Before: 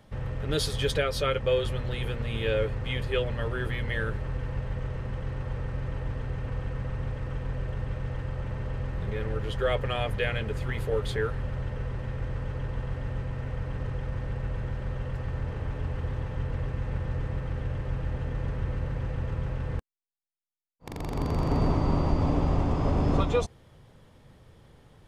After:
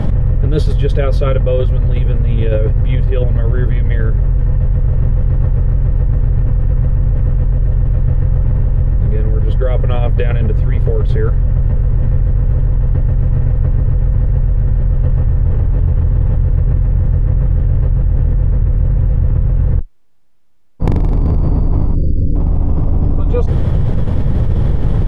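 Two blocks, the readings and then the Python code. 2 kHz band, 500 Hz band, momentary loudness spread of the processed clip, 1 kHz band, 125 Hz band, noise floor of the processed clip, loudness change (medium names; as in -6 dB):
+1.0 dB, +8.0 dB, 1 LU, +3.5 dB, +17.0 dB, -16 dBFS, +15.5 dB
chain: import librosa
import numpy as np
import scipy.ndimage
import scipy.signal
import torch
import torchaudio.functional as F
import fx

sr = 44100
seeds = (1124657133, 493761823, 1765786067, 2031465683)

y = fx.spec_erase(x, sr, start_s=21.95, length_s=0.41, low_hz=570.0, high_hz=4500.0)
y = fx.tilt_eq(y, sr, slope=-4.0)
y = fx.env_flatten(y, sr, amount_pct=100)
y = F.gain(torch.from_numpy(y), -10.0).numpy()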